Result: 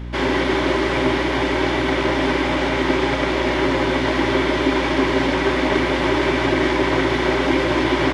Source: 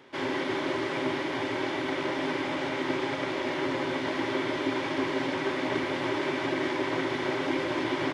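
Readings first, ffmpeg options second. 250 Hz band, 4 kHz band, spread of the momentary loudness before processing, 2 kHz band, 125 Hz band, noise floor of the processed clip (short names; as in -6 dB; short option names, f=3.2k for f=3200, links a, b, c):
+10.5 dB, +10.5 dB, 1 LU, +10.5 dB, +15.0 dB, -21 dBFS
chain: -af "acontrast=54,aeval=exprs='val(0)+0.0224*(sin(2*PI*60*n/s)+sin(2*PI*2*60*n/s)/2+sin(2*PI*3*60*n/s)/3+sin(2*PI*4*60*n/s)/4+sin(2*PI*5*60*n/s)/5)':c=same,volume=4.5dB"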